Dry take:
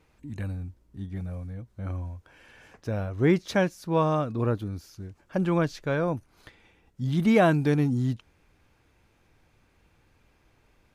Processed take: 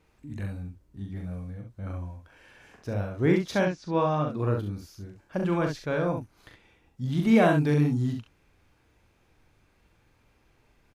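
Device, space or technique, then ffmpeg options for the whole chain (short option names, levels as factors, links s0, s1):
slapback doubling: -filter_complex "[0:a]asplit=3[s0][s1][s2];[s1]adelay=40,volume=0.531[s3];[s2]adelay=67,volume=0.501[s4];[s0][s3][s4]amix=inputs=3:normalize=0,asettb=1/sr,asplit=3[s5][s6][s7];[s5]atrim=end=3.654[s8];[s6]atrim=start=3.65:end=4.29,asetpts=PTS-STARTPTS,afade=t=in:d=0.004:c=qsin,afade=t=out:st=0.636:d=0.004:c=qsin,lowpass=f=6000:w=0.5412,lowpass=f=6000:w=1.3066[s9];[s7]atrim=start=4.286[s10];[s8][s9]acrossfade=d=0.004:c1=hsin:c2=qsin[s11];[s11][s10]acrossfade=d=0.004:c1=qsin:c2=hsin,volume=0.75"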